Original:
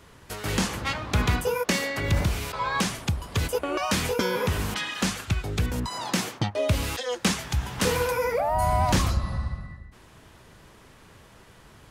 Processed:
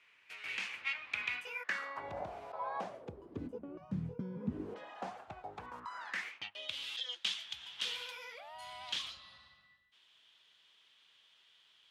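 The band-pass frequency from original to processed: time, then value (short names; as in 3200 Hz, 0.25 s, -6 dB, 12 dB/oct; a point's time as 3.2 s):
band-pass, Q 5.1
1.53 s 2400 Hz
2.14 s 710 Hz
2.81 s 710 Hz
3.83 s 150 Hz
4.34 s 150 Hz
4.91 s 730 Hz
5.44 s 730 Hz
6.62 s 3300 Hz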